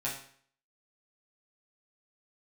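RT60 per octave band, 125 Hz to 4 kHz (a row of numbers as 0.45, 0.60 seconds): 0.55, 0.55, 0.55, 0.55, 0.55, 0.50 seconds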